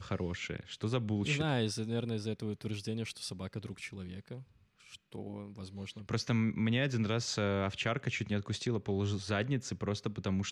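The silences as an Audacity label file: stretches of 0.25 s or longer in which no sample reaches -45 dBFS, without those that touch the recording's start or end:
4.420000	4.920000	silence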